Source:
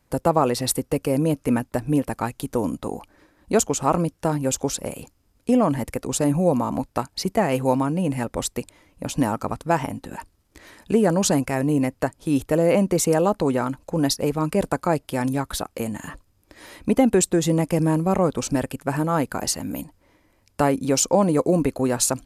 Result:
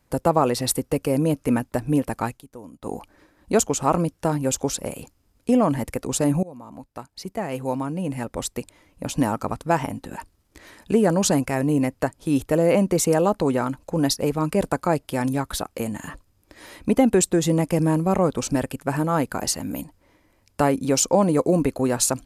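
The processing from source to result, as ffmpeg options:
-filter_complex "[0:a]asplit=4[a][b][c][d];[a]atrim=end=2.41,asetpts=PTS-STARTPTS,afade=t=out:st=2.29:d=0.12:c=qsin:silence=0.141254[e];[b]atrim=start=2.41:end=2.81,asetpts=PTS-STARTPTS,volume=-17dB[f];[c]atrim=start=2.81:end=6.43,asetpts=PTS-STARTPTS,afade=t=in:d=0.12:c=qsin:silence=0.141254,afade=t=out:st=3.616:d=0.004:c=hsin:silence=0.0668344[g];[d]atrim=start=6.43,asetpts=PTS-STARTPTS,afade=t=in:d=2.66:silence=0.0668344[h];[e][f][g][h]concat=n=4:v=0:a=1"

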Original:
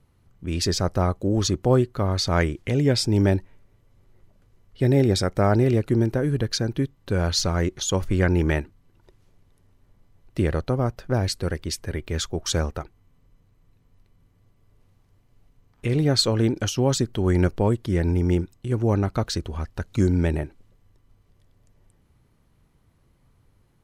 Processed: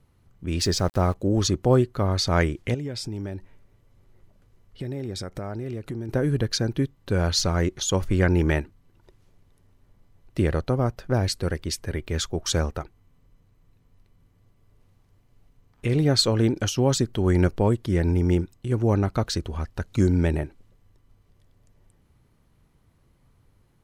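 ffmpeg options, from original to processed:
-filter_complex "[0:a]asplit=3[a][b][c];[a]afade=t=out:st=0.58:d=0.02[d];[b]aeval=exprs='val(0)*gte(abs(val(0)),0.01)':c=same,afade=t=in:st=0.58:d=0.02,afade=t=out:st=1.13:d=0.02[e];[c]afade=t=in:st=1.13:d=0.02[f];[d][e][f]amix=inputs=3:normalize=0,asettb=1/sr,asplit=3[g][h][i];[g]atrim=end=2.744[j];[h]atrim=start=2.74:end=6.09,asetpts=PTS-STARTPTS,afade=t=in:d=0.004:c=qsin,afade=t=out:st=3.346:d=0.004:c=qsin,acompressor=threshold=-30dB:ratio=4:attack=3.2:release=140:knee=1:detection=peak[k];[i]atrim=start=6.086[l];[j][k]acrossfade=d=0.004:c1=hsin:c2=qsin[m];[m][l]acrossfade=d=0.004:c1=qsin:c2=hsin"

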